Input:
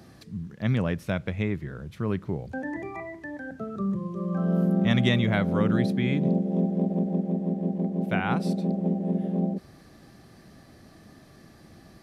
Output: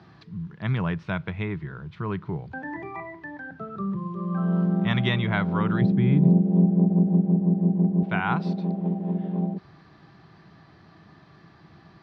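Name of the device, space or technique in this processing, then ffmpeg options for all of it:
guitar cabinet: -filter_complex "[0:a]highpass=82,equalizer=f=160:t=q:w=4:g=5,equalizer=f=240:t=q:w=4:g=-9,equalizer=f=540:t=q:w=4:g=-9,equalizer=f=980:t=q:w=4:g=8,equalizer=f=1.4k:t=q:w=4:g=4,lowpass=f=4.3k:w=0.5412,lowpass=f=4.3k:w=1.3066,asettb=1/sr,asplit=3[a][b][c];[a]atrim=end=5.814[d];[b]atrim=start=5.81:end=8.03,asetpts=PTS-STARTPTS,afade=t=in:d=0.004:c=qsin,afade=t=out:st=2.216:d=0.004:c=qsin,tiltshelf=f=640:g=8[e];[c]atrim=start=8.026[f];[d][e]acrossfade=d=0.004:c1=hsin:c2=qsin[g];[g][f]acrossfade=d=0.004:c1=qsin:c2=hsin"

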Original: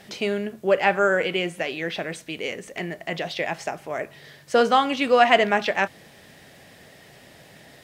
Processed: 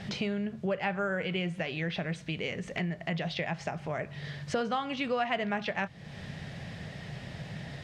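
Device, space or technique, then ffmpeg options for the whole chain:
jukebox: -af "lowpass=5.1k,lowshelf=f=220:t=q:w=1.5:g=9.5,acompressor=threshold=-37dB:ratio=3,volume=3.5dB"

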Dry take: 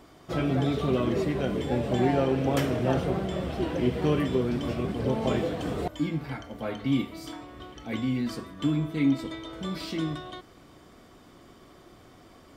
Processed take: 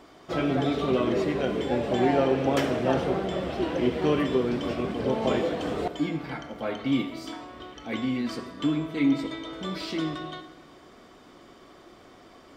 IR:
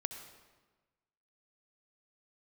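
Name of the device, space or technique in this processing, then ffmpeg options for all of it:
filtered reverb send: -filter_complex "[0:a]asplit=2[a][b];[b]highpass=200,lowpass=7.8k[c];[1:a]atrim=start_sample=2205[d];[c][d]afir=irnorm=-1:irlink=0,volume=2.5dB[e];[a][e]amix=inputs=2:normalize=0,volume=-4dB"

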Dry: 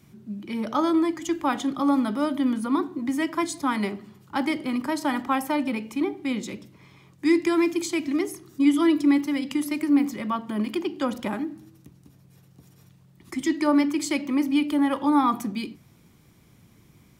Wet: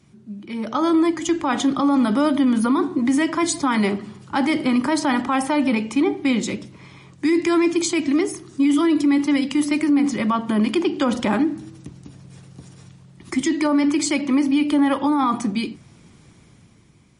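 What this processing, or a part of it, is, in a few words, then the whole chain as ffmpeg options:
low-bitrate web radio: -af "dynaudnorm=f=110:g=17:m=13dB,alimiter=limit=-11dB:level=0:latency=1:release=35" -ar 32000 -c:a libmp3lame -b:a 40k

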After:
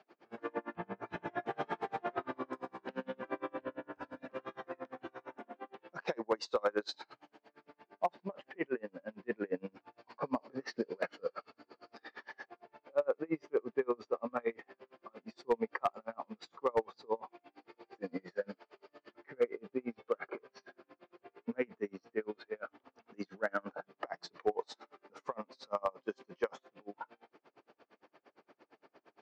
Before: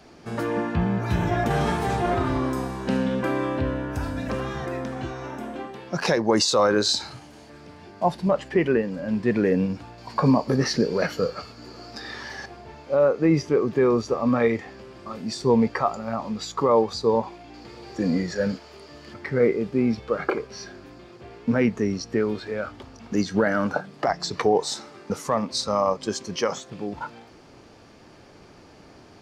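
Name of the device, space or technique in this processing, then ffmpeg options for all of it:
helicopter radio: -af "highpass=370,lowpass=2.6k,aeval=exprs='val(0)*pow(10,-35*(0.5-0.5*cos(2*PI*8.7*n/s))/20)':c=same,asoftclip=type=hard:threshold=-16dB,volume=-5.5dB"

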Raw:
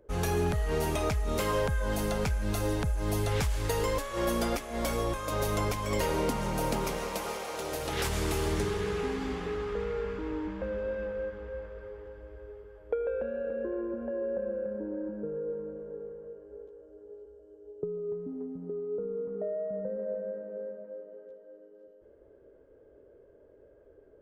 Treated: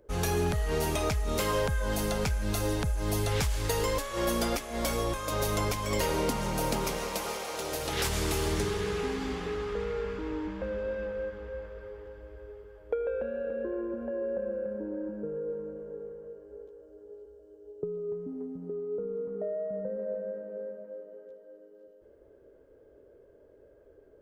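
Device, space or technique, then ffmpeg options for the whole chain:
presence and air boost: -af "equalizer=f=4.8k:t=o:w=1.7:g=3.5,highshelf=f=11k:g=5"

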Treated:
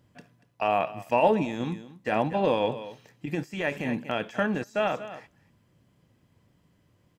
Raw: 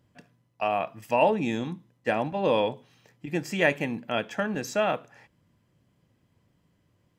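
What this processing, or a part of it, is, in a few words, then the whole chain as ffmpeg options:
de-esser from a sidechain: -filter_complex "[0:a]aecho=1:1:237:0.126,asplit=2[a][b];[b]highpass=f=5.3k:w=0.5412,highpass=f=5.3k:w=1.3066,apad=whole_len=327327[c];[a][c]sidechaincompress=threshold=-58dB:ratio=10:attack=2.6:release=21,volume=3dB"

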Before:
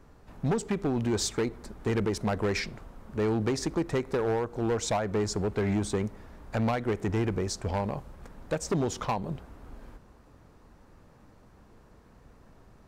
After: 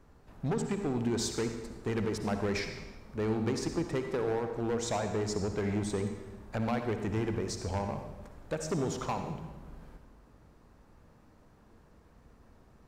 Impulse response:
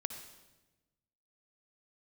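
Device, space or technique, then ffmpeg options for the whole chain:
bathroom: -filter_complex "[1:a]atrim=start_sample=2205[a];[0:a][a]afir=irnorm=-1:irlink=0,volume=-3.5dB"

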